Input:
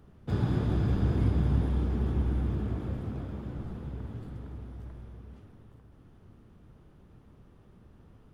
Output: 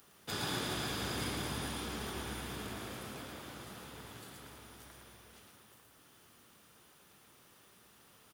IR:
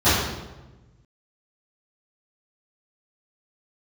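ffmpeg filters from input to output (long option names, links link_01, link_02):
-af "aderivative,aecho=1:1:112:0.596,volume=17.5dB"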